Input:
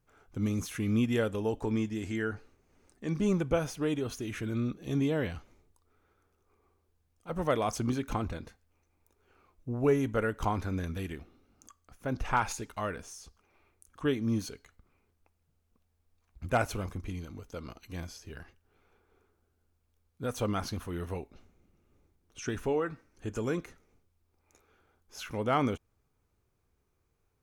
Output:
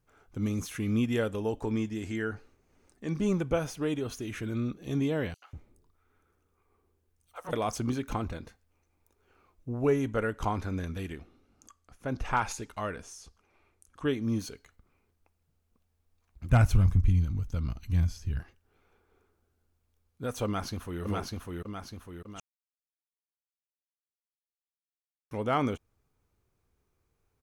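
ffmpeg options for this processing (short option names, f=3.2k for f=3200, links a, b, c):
-filter_complex "[0:a]asettb=1/sr,asplit=3[a][b][c];[a]atrim=end=5.344[d];[b]atrim=start=5.34:end=7.53,asetpts=PTS-STARTPTS,afade=t=in:d=0.004:c=qsin,afade=t=out:st=2.186:d=0.004:c=qsin,acrossover=split=610|4700[e][f][g];[f]adelay=80[h];[e]adelay=190[i];[i][h][g]amix=inputs=3:normalize=0,atrim=end_sample=96579[j];[c]atrim=start=7.526[k];[d][j]acrossfade=d=0.004:c1=hsin:c2=qsin[l];[l][k]acrossfade=d=0.004:c1=qsin:c2=hsin,asettb=1/sr,asplit=3[m][n][o];[m]atrim=end=9.834[p];[n]atrim=start=9.83:end=14.2,asetpts=PTS-STARTPTS,afade=t=in:d=0.004:c=qsin,afade=t=out:st=4.366:d=0.004:c=qsin,lowpass=12k[q];[o]atrim=start=14.196[r];[p][q]acrossfade=d=0.004:c1=hsin:c2=qsin[s];[s][r]acrossfade=d=0.004:c1=qsin:c2=hsin,asplit=3[t][u][v];[t]afade=t=out:st=16.49:d=0.02[w];[u]asubboost=boost=10.5:cutoff=130,afade=t=in:st=16.49:d=0.02,afade=t=out:st=18.39:d=0.02[x];[v]afade=t=in:st=18.39:d=0.02[y];[w][x][y]amix=inputs=3:normalize=0,asplit=2[z][aa];[aa]afade=t=in:st=20.45:d=0.01,afade=t=out:st=21.02:d=0.01,aecho=0:1:600|1200|1800|2400|3000|3600|4200:0.841395|0.420698|0.210349|0.105174|0.0525872|0.0262936|0.0131468[ab];[z][ab]amix=inputs=2:normalize=0,asplit=3[ac][ad][ae];[ac]atrim=end=22.4,asetpts=PTS-STARTPTS,afade=t=out:st=22.396:d=0.004:c=hsin[af];[ad]atrim=start=22.4:end=25.31,asetpts=PTS-STARTPTS,volume=0[ag];[ae]atrim=start=25.31,asetpts=PTS-STARTPTS,afade=t=in:d=0.004:c=hsin[ah];[af][ag][ah]concat=n=3:v=0:a=1"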